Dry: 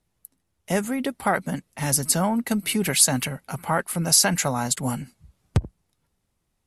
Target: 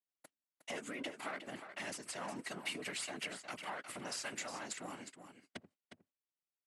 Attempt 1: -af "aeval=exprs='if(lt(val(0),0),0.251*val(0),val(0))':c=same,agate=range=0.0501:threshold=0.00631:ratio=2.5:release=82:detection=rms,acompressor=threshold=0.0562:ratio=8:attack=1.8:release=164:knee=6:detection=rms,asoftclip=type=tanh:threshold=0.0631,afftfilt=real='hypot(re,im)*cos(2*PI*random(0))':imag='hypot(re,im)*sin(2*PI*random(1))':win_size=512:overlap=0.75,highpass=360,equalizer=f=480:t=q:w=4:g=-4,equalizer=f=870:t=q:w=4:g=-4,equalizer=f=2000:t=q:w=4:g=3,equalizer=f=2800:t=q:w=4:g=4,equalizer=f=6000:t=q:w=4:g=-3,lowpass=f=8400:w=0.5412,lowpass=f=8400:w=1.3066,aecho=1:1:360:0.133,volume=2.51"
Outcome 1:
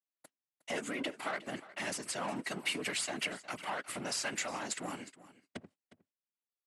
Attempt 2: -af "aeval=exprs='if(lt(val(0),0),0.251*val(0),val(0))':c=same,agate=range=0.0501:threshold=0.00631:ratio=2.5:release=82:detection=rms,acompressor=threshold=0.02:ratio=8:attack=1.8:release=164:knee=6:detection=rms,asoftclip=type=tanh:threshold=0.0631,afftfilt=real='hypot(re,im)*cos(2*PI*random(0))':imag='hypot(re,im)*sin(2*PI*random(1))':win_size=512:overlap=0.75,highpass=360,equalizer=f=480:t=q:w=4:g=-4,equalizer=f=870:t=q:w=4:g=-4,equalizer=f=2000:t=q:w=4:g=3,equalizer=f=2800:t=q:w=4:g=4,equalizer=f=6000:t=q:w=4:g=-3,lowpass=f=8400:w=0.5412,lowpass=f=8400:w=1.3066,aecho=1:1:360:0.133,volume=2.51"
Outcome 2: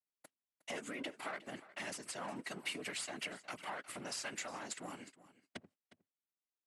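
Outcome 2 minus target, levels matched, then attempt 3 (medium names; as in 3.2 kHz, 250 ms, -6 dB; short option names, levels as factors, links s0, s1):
echo-to-direct -8 dB
-af "aeval=exprs='if(lt(val(0),0),0.251*val(0),val(0))':c=same,agate=range=0.0501:threshold=0.00631:ratio=2.5:release=82:detection=rms,acompressor=threshold=0.02:ratio=8:attack=1.8:release=164:knee=6:detection=rms,asoftclip=type=tanh:threshold=0.0631,afftfilt=real='hypot(re,im)*cos(2*PI*random(0))':imag='hypot(re,im)*sin(2*PI*random(1))':win_size=512:overlap=0.75,highpass=360,equalizer=f=480:t=q:w=4:g=-4,equalizer=f=870:t=q:w=4:g=-4,equalizer=f=2000:t=q:w=4:g=3,equalizer=f=2800:t=q:w=4:g=4,equalizer=f=6000:t=q:w=4:g=-3,lowpass=f=8400:w=0.5412,lowpass=f=8400:w=1.3066,aecho=1:1:360:0.335,volume=2.51"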